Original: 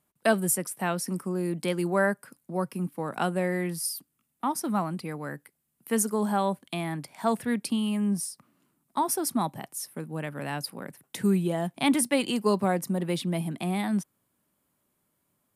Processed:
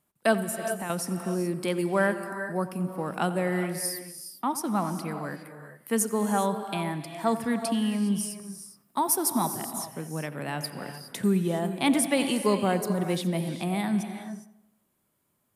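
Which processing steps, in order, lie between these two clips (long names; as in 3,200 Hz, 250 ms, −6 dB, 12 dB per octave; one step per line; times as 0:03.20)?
0:00.42–0:00.90: downward compressor 5 to 1, threshold −32 dBFS, peak gain reduction 10 dB
0:08.30–0:09.45: high-shelf EQ 11,000 Hz +10.5 dB
feedback echo with a low-pass in the loop 88 ms, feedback 52%, low-pass 2,900 Hz, level −15 dB
reverb whose tail is shaped and stops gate 440 ms rising, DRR 8.5 dB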